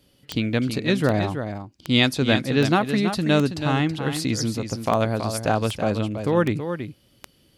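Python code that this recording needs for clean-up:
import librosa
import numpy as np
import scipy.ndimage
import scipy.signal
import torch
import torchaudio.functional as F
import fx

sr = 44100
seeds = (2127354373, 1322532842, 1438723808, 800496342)

y = fx.fix_declick_ar(x, sr, threshold=10.0)
y = fx.fix_echo_inverse(y, sr, delay_ms=326, level_db=-8.5)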